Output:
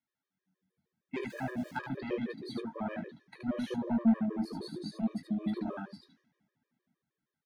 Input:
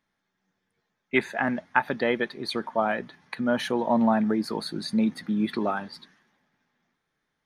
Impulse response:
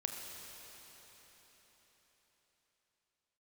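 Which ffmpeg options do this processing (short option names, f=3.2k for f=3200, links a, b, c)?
-filter_complex "[0:a]asettb=1/sr,asplit=3[a][b][c];[a]atrim=end=1.304[d];[b]atrim=start=1.3:end=1.71,asetpts=PTS-STARTPTS,afade=t=in:d=0.004:c=qsin,afade=t=out:st=0.406:d=0.004:c=qsin,aeval=exprs='val(0)+0.5*0.0224*sgn(val(0))':c=same[e];[c]atrim=start=1.706[f];[d][e]acrossfade=d=0.004:c1=hsin:c2=qsin[g];[g][f]acrossfade=d=0.004:c1=qsin:c2=hsin,highpass=91,acrossover=split=370[h][i];[h]dynaudnorm=f=160:g=5:m=12.5dB[j];[j][i]amix=inputs=2:normalize=0,asoftclip=type=tanh:threshold=-11.5dB,flanger=delay=7.7:depth=8.6:regen=-50:speed=0.76:shape=triangular,aecho=1:1:22|75:0.398|0.668,afftfilt=real='re*gt(sin(2*PI*6.4*pts/sr)*(1-2*mod(floor(b*sr/1024/320),2)),0)':imag='im*gt(sin(2*PI*6.4*pts/sr)*(1-2*mod(floor(b*sr/1024/320),2)),0)':win_size=1024:overlap=0.75,volume=-9dB"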